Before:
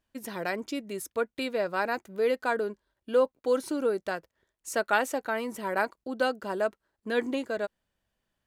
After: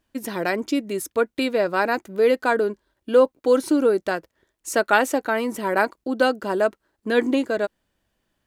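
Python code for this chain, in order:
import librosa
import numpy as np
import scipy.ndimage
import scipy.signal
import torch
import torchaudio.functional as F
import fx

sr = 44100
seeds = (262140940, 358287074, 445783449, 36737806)

y = fx.peak_eq(x, sr, hz=310.0, db=5.5, octaves=0.59)
y = y * 10.0 ** (7.0 / 20.0)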